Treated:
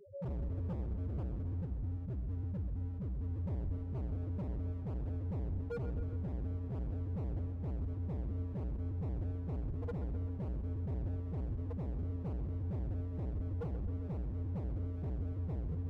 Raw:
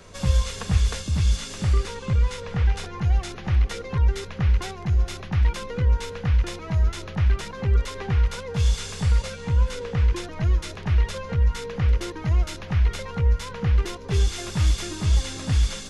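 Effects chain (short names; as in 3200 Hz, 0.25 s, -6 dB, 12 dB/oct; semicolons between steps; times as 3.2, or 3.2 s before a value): spectral trails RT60 1.73 s; HPF 87 Hz 6 dB/oct; in parallel at -1 dB: limiter -18.5 dBFS, peak gain reduction 8 dB; 1.57–3.33 on the sum: level quantiser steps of 24 dB; flange 1.1 Hz, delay 2 ms, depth 9.7 ms, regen +75%; loudest bins only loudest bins 1; hard clip -39 dBFS, distortion -5 dB; on a send: darkening echo 0.13 s, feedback 68%, low-pass 3500 Hz, level -10.5 dB; on the sum: gain +2 dB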